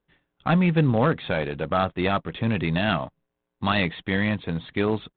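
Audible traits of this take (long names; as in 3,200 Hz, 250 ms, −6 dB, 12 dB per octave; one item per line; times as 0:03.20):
IMA ADPCM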